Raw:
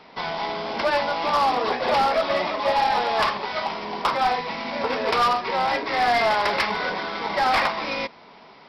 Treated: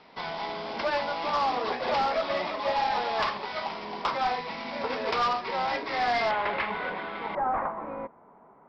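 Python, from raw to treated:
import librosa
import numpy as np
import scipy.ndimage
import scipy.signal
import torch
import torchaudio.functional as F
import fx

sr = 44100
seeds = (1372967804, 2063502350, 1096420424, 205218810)

y = fx.lowpass(x, sr, hz=fx.steps((0.0, 6300.0), (6.31, 3100.0), (7.35, 1300.0)), slope=24)
y = y * 10.0 ** (-6.0 / 20.0)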